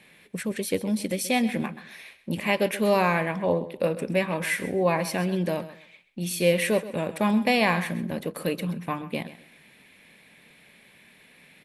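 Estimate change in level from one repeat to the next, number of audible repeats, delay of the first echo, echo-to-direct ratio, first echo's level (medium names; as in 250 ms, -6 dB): -12.5 dB, 2, 130 ms, -14.5 dB, -15.0 dB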